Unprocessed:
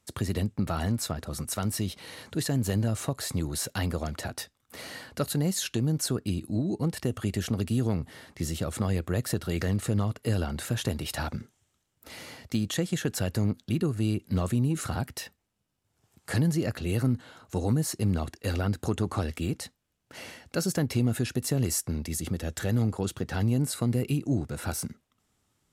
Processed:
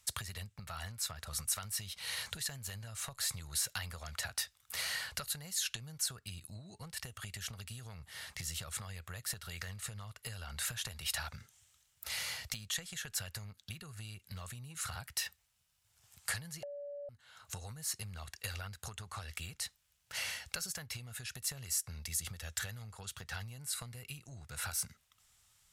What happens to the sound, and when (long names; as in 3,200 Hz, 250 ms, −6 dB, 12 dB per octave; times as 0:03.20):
0:16.63–0:17.09: beep over 574 Hz −7 dBFS
whole clip: dynamic equaliser 1,500 Hz, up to +3 dB, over −45 dBFS, Q 0.86; downward compressor 12 to 1, threshold −38 dBFS; guitar amp tone stack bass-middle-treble 10-0-10; level +9 dB